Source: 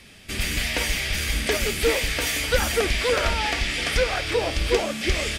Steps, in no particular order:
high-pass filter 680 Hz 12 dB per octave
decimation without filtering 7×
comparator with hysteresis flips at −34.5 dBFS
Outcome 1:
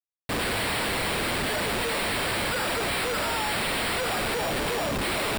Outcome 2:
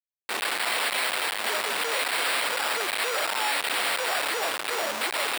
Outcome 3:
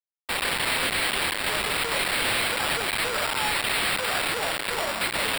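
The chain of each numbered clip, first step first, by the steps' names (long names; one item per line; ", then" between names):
high-pass filter, then decimation without filtering, then comparator with hysteresis
decimation without filtering, then comparator with hysteresis, then high-pass filter
comparator with hysteresis, then high-pass filter, then decimation without filtering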